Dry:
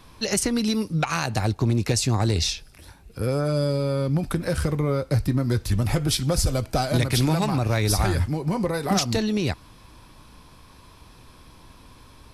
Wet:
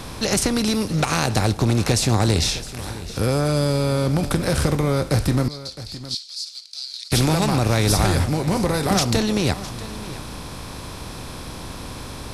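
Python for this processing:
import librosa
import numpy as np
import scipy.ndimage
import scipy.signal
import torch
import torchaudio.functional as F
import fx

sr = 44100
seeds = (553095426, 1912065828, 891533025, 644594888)

y = fx.bin_compress(x, sr, power=0.6)
y = fx.ladder_bandpass(y, sr, hz=4700.0, resonance_pct=75, at=(5.48, 7.12))
y = y + 10.0 ** (-16.0 / 20.0) * np.pad(y, (int(662 * sr / 1000.0), 0))[:len(y)]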